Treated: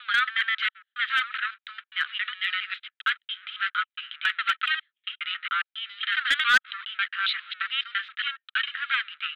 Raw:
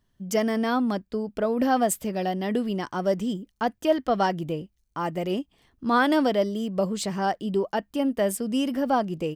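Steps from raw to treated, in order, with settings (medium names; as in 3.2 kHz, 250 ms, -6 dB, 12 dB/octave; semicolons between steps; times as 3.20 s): slices played last to first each 137 ms, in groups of 7; gate with hold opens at -51 dBFS; waveshaping leveller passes 3; Chebyshev band-pass 1.3–3.9 kHz, order 5; in parallel at -5.5 dB: wavefolder -18.5 dBFS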